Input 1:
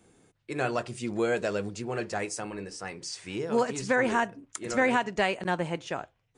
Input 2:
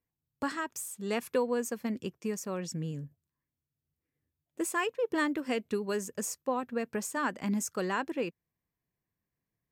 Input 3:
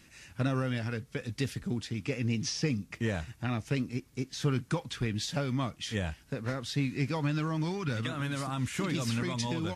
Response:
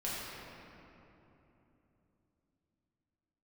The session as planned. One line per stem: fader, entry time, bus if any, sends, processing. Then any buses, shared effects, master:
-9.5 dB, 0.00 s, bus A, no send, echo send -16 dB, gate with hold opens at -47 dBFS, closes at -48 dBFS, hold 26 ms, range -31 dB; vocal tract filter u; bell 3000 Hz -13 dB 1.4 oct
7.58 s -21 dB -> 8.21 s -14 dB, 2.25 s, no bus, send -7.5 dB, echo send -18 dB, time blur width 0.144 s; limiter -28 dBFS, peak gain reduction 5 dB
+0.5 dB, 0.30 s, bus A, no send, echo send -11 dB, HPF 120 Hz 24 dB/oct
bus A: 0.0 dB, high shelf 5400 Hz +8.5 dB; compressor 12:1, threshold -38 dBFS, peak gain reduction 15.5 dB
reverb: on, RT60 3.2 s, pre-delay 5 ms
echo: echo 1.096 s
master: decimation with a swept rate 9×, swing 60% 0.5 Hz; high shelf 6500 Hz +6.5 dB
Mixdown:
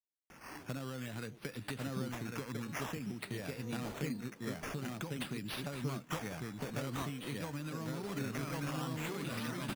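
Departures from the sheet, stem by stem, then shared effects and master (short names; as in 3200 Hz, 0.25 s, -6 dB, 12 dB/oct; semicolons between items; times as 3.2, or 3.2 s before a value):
stem 1 -9.5 dB -> -17.0 dB; master: missing high shelf 6500 Hz +6.5 dB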